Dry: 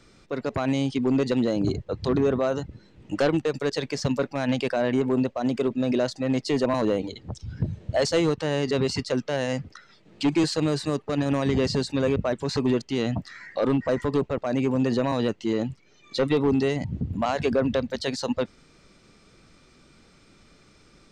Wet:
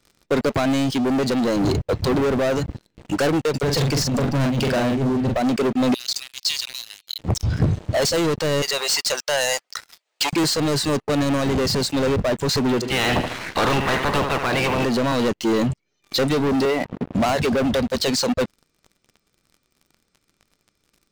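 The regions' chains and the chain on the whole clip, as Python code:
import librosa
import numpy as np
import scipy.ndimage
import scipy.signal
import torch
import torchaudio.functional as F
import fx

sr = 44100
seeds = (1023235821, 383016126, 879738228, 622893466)

y = fx.chain(x, sr, fx.bass_treble(bass_db=13, treble_db=-2),
    fx.over_compress(threshold_db=-22.0, ratio=-0.5),
    fx.doubler(ms=44.0, db=-6), at=(3.63, 5.37))
y = fx.chain(y, sr, fx.ladder_highpass(hz=3000.0, resonance_pct=35),
    fx.sustainer(db_per_s=82.0), at=(5.94, 7.19))
y = fx.chain(y, sr, fx.highpass(hz=650.0, slope=24),
    fx.high_shelf(hz=4900.0, db=10.0), at=(8.62, 10.33))
y = fx.spec_clip(y, sr, under_db=24, at=(12.81, 14.84), fade=0.02)
y = fx.lowpass(y, sr, hz=3400.0, slope=24, at=(12.81, 14.84), fade=0.02)
y = fx.echo_feedback(y, sr, ms=74, feedback_pct=47, wet_db=-13.0, at=(12.81, 14.84), fade=0.02)
y = fx.chain(y, sr, fx.highpass(hz=450.0, slope=12),
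    fx.leveller(passes=1),
    fx.air_absorb(metres=390.0), at=(16.65, 17.15))
y = fx.high_shelf(y, sr, hz=5900.0, db=7.0)
y = fx.leveller(y, sr, passes=5)
y = fx.rider(y, sr, range_db=4, speed_s=0.5)
y = y * librosa.db_to_amplitude(-7.0)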